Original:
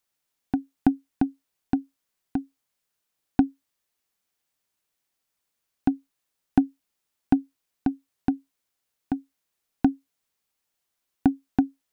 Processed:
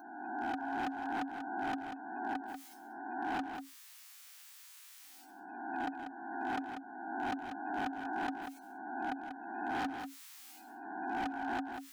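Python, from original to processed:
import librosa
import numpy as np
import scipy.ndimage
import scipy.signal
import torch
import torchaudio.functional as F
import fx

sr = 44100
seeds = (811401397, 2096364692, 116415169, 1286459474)

y = fx.spec_swells(x, sr, rise_s=0.78)
y = scipy.signal.sosfilt(scipy.signal.butter(2, 1100.0, 'highpass', fs=sr, output='sos'), y)
y = fx.spec_gate(y, sr, threshold_db=-15, keep='strong')
y = fx.rider(y, sr, range_db=4, speed_s=0.5)
y = np.clip(y, -10.0 ** (-38.0 / 20.0), 10.0 ** (-38.0 / 20.0))
y = y + 10.0 ** (-14.0 / 20.0) * np.pad(y, (int(190 * sr / 1000.0), 0))[:len(y)]
y = fx.env_flatten(y, sr, amount_pct=50)
y = y * 10.0 ** (5.0 / 20.0)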